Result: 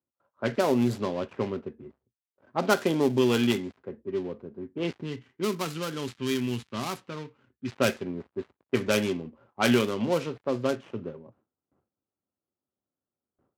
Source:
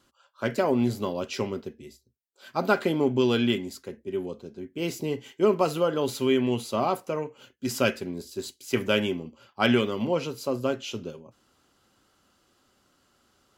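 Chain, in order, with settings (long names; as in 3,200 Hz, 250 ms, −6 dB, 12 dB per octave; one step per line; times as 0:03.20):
gap after every zero crossing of 0.14 ms
high-pass filter 69 Hz 24 dB per octave
noise gate with hold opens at −54 dBFS
low-pass that shuts in the quiet parts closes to 730 Hz, open at −20 dBFS
0:05.01–0:07.72: parametric band 600 Hz −13.5 dB 1.5 octaves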